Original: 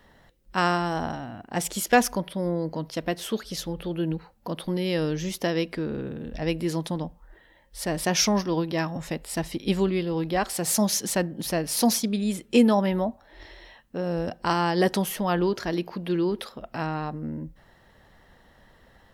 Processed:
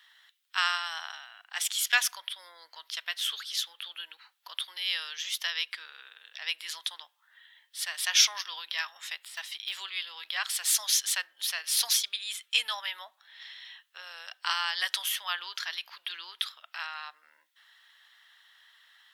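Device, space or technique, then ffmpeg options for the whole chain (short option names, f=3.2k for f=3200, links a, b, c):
headphones lying on a table: -filter_complex "[0:a]asettb=1/sr,asplit=3[a][b][c];[a]atrim=end=9.204[d];[b]atrim=start=9.2:end=9.91,asetpts=PTS-STARTPTS,afade=t=in:d=0.004:c=qsin,afade=t=out:st=0.706:d=0.004:c=qsin,deesser=0.95[e];[c]atrim=start=9.906[f];[d][e]acrossfade=d=0.004:c1=hsin:c2=qsin[g];[g][f]acrossfade=d=0.004:c1=qsin:c2=hsin,highpass=f=1.3k:w=0.5412,highpass=f=1.3k:w=1.3066,equalizer=f=3.4k:t=o:w=0.52:g=10"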